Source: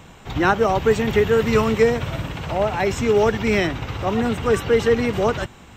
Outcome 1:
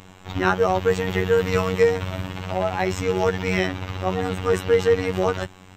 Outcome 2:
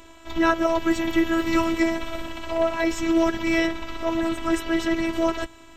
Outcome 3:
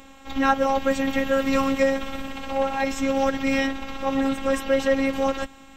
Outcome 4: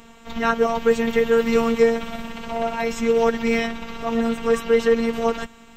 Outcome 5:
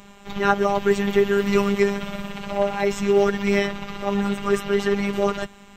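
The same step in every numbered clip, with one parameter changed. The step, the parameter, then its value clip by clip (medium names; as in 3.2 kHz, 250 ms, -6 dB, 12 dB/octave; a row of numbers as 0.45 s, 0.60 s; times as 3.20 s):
robot voice, frequency: 93 Hz, 330 Hz, 270 Hz, 230 Hz, 200 Hz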